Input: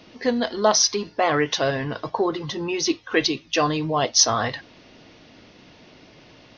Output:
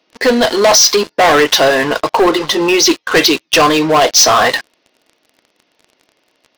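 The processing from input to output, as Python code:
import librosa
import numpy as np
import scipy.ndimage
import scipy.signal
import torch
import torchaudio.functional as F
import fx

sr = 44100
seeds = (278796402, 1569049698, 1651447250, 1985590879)

y = scipy.signal.sosfilt(scipy.signal.butter(2, 360.0, 'highpass', fs=sr, output='sos'), x)
y = fx.leveller(y, sr, passes=5)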